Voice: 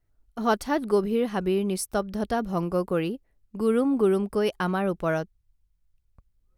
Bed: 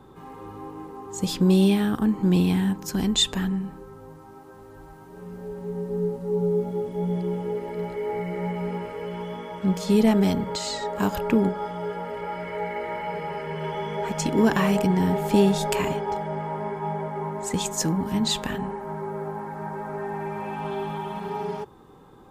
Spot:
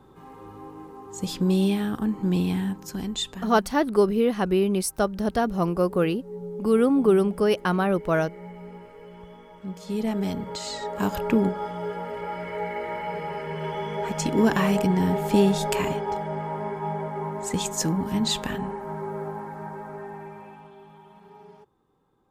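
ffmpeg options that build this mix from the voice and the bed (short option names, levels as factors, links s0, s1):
-filter_complex "[0:a]adelay=3050,volume=1.41[s0];[1:a]volume=2.51,afade=t=out:st=2.58:d=0.93:silence=0.375837,afade=t=in:st=9.76:d=1.48:silence=0.266073,afade=t=out:st=19.2:d=1.51:silence=0.125893[s1];[s0][s1]amix=inputs=2:normalize=0"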